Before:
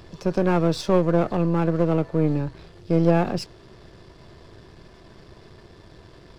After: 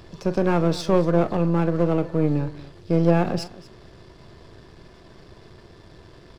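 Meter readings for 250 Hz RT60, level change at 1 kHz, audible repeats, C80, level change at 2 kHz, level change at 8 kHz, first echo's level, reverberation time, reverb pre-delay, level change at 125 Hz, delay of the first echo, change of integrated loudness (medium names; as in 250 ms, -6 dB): no reverb, 0.0 dB, 2, no reverb, +0.5 dB, no reading, -15.0 dB, no reverb, no reverb, +0.5 dB, 41 ms, 0.0 dB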